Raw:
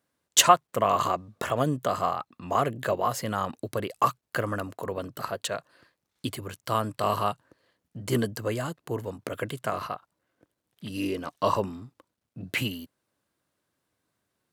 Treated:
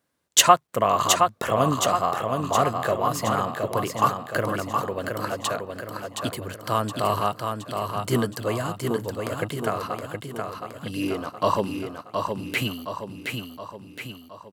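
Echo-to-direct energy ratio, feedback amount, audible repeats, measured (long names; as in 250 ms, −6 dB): −3.5 dB, 52%, 6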